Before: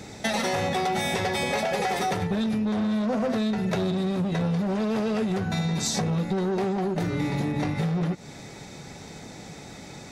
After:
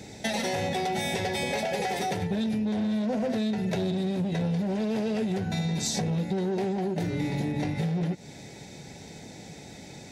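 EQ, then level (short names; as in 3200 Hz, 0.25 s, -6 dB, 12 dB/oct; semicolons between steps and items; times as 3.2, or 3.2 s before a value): HPF 43 Hz; bell 1200 Hz -14 dB 0.41 oct; -2.0 dB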